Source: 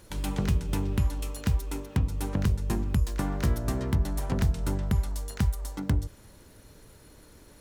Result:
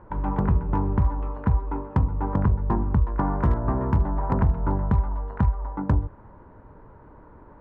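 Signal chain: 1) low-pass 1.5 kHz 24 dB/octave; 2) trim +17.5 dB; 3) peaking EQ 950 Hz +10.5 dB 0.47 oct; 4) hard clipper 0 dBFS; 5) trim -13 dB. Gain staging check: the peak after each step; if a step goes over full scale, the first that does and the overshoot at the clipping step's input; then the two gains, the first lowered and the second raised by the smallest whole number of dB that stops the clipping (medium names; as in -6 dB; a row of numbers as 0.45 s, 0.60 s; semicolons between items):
-15.5 dBFS, +2.0 dBFS, +4.0 dBFS, 0.0 dBFS, -13.0 dBFS; step 2, 4.0 dB; step 2 +13.5 dB, step 5 -9 dB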